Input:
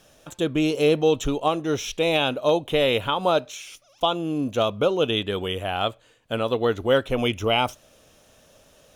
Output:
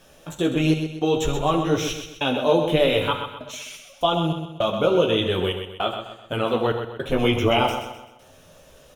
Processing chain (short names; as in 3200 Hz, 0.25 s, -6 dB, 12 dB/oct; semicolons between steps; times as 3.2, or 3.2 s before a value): bell 6300 Hz -3.5 dB 1.7 oct; in parallel at +1.5 dB: limiter -18 dBFS, peak gain reduction 9 dB; on the sum: chorus voices 4, 0.5 Hz, delay 15 ms, depth 3.9 ms; step gate "xxxxxxxx...xx" 163 bpm -60 dB; feedback echo 0.128 s, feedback 41%, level -8 dB; on a send at -9 dB: reverb, pre-delay 3 ms